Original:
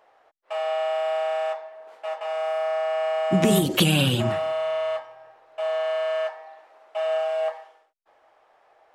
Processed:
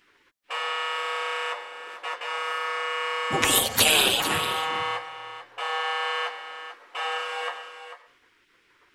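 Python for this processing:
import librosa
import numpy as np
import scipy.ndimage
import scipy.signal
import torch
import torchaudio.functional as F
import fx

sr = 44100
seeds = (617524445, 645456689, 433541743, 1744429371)

y = fx.spec_gate(x, sr, threshold_db=-15, keep='weak')
y = y + 10.0 ** (-11.0 / 20.0) * np.pad(y, (int(443 * sr / 1000.0), 0))[:len(y)]
y = y * librosa.db_to_amplitude(8.0)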